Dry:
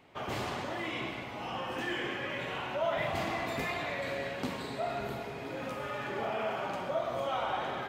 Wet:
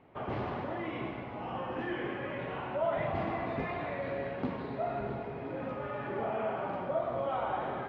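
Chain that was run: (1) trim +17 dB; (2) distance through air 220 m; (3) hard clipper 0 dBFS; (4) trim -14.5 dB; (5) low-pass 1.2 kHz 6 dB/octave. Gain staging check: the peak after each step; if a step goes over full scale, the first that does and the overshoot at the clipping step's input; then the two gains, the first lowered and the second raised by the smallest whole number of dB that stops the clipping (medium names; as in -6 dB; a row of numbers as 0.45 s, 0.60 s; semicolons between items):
-3.0 dBFS, -5.0 dBFS, -5.0 dBFS, -19.5 dBFS, -21.0 dBFS; nothing clips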